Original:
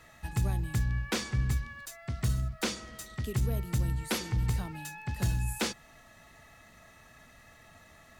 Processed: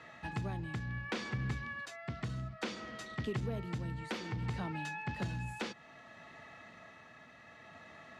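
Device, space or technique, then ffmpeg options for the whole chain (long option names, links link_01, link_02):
AM radio: -af "highpass=150,lowpass=3500,acompressor=threshold=-35dB:ratio=5,asoftclip=type=tanh:threshold=-29dB,tremolo=f=0.62:d=0.31,volume=4dB"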